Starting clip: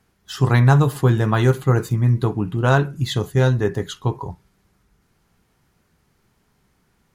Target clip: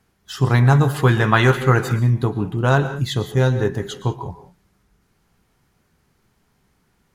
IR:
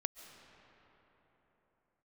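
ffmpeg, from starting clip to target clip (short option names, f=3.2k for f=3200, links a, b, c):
-filter_complex "[0:a]asettb=1/sr,asplit=3[a][b][c];[a]atrim=end=0.944[d];[b]atrim=start=0.94:end=1.99,asetpts=PTS-STARTPTS,afade=t=in:d=0.004:c=qsin,afade=t=out:st=1.046:d=0.004:c=qsin,equalizer=f=2.1k:w=0.56:g=10.5[e];[c]atrim=start=1.986[f];[d][e]acrossfade=d=0.004:c1=hsin:c2=qsin[g];[g][f]acrossfade=d=0.004:c1=qsin:c2=hsin[h];[1:a]atrim=start_sample=2205,afade=t=out:st=0.3:d=0.01,atrim=end_sample=13671,asetrate=52920,aresample=44100[i];[h][i]afir=irnorm=-1:irlink=0,volume=3dB"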